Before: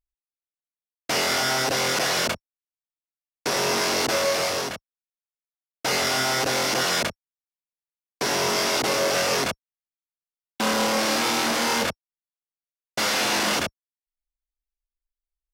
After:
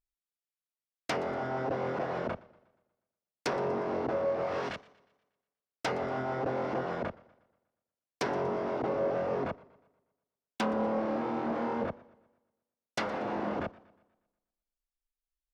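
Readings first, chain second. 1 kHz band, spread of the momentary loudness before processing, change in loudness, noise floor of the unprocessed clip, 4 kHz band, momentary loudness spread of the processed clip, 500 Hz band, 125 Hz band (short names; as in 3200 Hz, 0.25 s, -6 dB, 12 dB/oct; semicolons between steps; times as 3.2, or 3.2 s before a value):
-8.5 dB, 8 LU, -10.5 dB, under -85 dBFS, -23.0 dB, 8 LU, -5.0 dB, -4.5 dB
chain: treble ducked by the level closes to 770 Hz, closed at -20 dBFS; warbling echo 0.12 s, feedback 48%, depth 99 cents, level -22 dB; gain -4.5 dB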